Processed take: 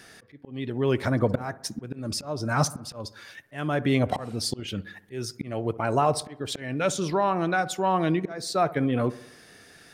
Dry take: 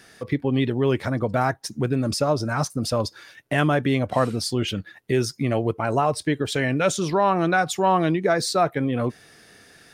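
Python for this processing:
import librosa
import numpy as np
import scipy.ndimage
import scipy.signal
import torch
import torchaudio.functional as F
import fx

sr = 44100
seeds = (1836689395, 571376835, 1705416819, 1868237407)

y = fx.auto_swell(x, sr, attack_ms=593.0)
y = fx.rider(y, sr, range_db=5, speed_s=0.5)
y = fx.echo_wet_lowpass(y, sr, ms=64, feedback_pct=57, hz=1600.0, wet_db=-17.5)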